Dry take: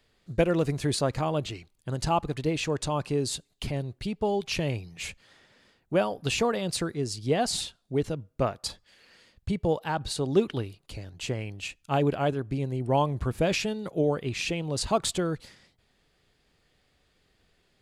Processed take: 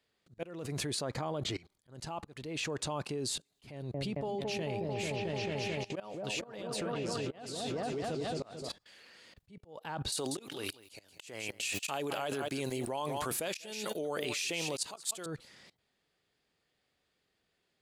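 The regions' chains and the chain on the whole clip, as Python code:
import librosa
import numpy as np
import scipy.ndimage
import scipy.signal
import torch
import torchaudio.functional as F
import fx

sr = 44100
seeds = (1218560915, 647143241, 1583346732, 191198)

y = fx.chain(x, sr, fx.high_shelf(hz=8200.0, db=-6.5),
    fx.notch(hz=2700.0, q=6.3), at=(1.05, 1.95))
y = fx.chain(y, sr, fx.high_shelf(hz=11000.0, db=-5.0),
    fx.echo_opening(ms=221, hz=750, octaves=1, feedback_pct=70, wet_db=-3), at=(3.72, 8.69))
y = fx.chain(y, sr, fx.riaa(side='recording'),
    fx.echo_single(ms=191, db=-15.0),
    fx.sustainer(db_per_s=110.0), at=(10.12, 15.26))
y = fx.highpass(y, sr, hz=190.0, slope=6)
y = fx.level_steps(y, sr, step_db=22)
y = fx.auto_swell(y, sr, attack_ms=387.0)
y = F.gain(torch.from_numpy(y), 8.5).numpy()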